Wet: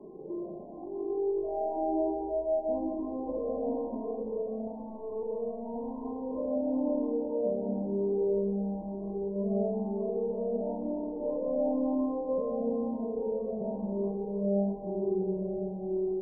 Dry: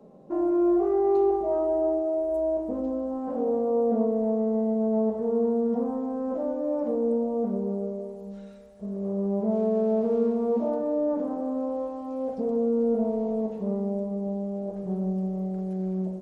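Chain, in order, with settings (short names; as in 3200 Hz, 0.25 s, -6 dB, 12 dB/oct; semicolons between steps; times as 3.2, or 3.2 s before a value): bell 360 Hz +13 dB 0.54 oct; limiter -29 dBFS, peak gain reduction 24.5 dB; 4.67–6.05 tube stage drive 36 dB, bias 0.25; brick-wall FIR low-pass 1100 Hz; multi-head echo 0.125 s, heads first and third, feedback 57%, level -11 dB; digital reverb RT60 3.6 s, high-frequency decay 0.3×, pre-delay 0.105 s, DRR -2.5 dB; cascading flanger rising 1 Hz; gain +4 dB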